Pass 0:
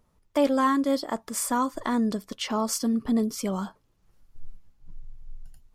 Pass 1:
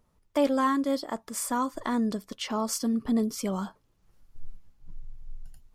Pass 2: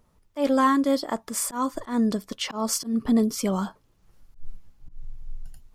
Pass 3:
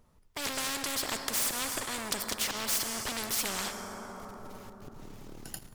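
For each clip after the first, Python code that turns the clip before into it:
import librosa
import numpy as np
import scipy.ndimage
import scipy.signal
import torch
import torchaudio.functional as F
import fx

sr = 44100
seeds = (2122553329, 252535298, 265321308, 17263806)

y1 = fx.rider(x, sr, range_db=10, speed_s=2.0)
y1 = y1 * librosa.db_to_amplitude(-3.5)
y2 = fx.auto_swell(y1, sr, attack_ms=145.0)
y2 = y2 * librosa.db_to_amplitude(5.0)
y3 = fx.leveller(y2, sr, passes=3)
y3 = fx.rev_plate(y3, sr, seeds[0], rt60_s=3.2, hf_ratio=0.55, predelay_ms=0, drr_db=14.0)
y3 = fx.spectral_comp(y3, sr, ratio=4.0)
y3 = y3 * librosa.db_to_amplitude(-6.0)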